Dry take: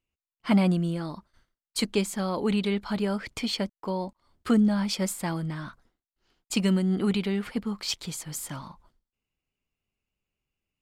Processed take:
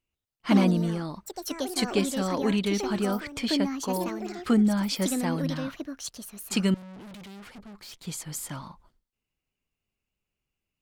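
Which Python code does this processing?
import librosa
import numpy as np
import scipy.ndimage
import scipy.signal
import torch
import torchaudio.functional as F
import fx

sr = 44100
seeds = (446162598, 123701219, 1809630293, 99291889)

y = fx.echo_pitch(x, sr, ms=138, semitones=5, count=2, db_per_echo=-6.0)
y = fx.tube_stage(y, sr, drive_db=43.0, bias=0.8, at=(6.74, 8.07))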